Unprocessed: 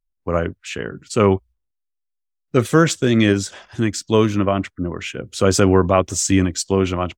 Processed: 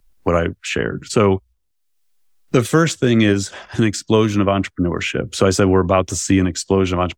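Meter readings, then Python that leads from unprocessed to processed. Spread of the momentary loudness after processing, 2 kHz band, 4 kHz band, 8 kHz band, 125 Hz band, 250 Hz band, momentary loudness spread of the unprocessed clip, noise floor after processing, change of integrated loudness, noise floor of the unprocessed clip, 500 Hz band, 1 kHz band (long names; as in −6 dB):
7 LU, +2.0 dB, +1.5 dB, −1.0 dB, +1.0 dB, +1.5 dB, 12 LU, −66 dBFS, +1.0 dB, −78 dBFS, +1.0 dB, +1.0 dB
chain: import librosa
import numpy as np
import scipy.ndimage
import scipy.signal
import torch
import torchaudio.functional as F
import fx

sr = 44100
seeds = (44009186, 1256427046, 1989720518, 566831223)

y = fx.band_squash(x, sr, depth_pct=70)
y = F.gain(torch.from_numpy(y), 1.0).numpy()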